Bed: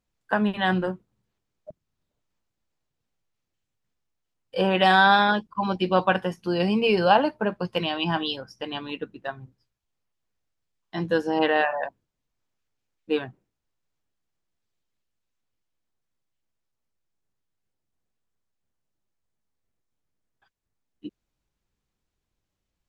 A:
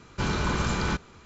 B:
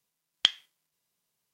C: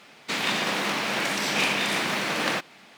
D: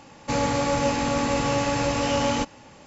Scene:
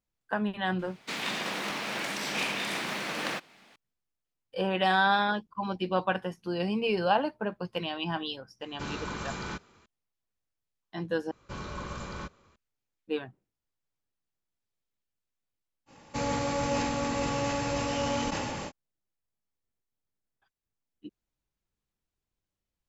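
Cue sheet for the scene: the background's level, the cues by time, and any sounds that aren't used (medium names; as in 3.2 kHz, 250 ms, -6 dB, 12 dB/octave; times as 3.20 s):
bed -7 dB
0.79 s: add C -7 dB
8.61 s: add A -8 dB + bass shelf 120 Hz -9 dB
11.31 s: replace with A -13 dB + small resonant body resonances 560/1100 Hz, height 10 dB
15.86 s: add D -7 dB, fades 0.05 s + decay stretcher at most 20 dB/s
not used: B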